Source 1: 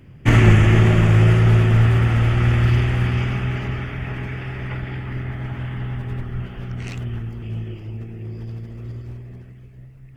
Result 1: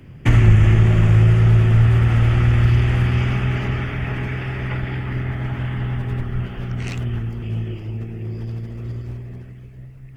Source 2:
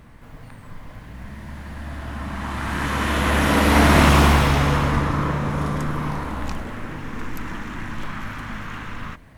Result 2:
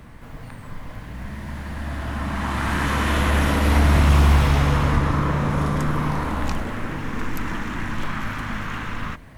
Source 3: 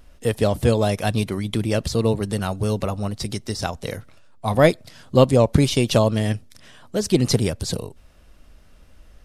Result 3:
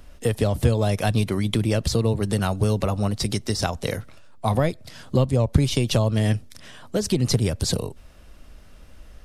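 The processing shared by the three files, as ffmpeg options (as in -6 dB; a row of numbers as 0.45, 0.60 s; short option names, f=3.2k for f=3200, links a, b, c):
-filter_complex "[0:a]acrossover=split=120[a][b];[b]acompressor=threshold=-23dB:ratio=10[c];[a][c]amix=inputs=2:normalize=0,volume=3.5dB"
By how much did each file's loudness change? 0.0, -2.0, -2.0 LU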